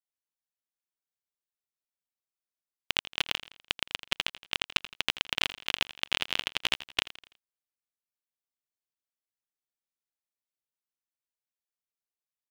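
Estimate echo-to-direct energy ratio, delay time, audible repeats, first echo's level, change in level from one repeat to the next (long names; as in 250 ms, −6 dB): −15.0 dB, 83 ms, 3, −16.0 dB, −7.0 dB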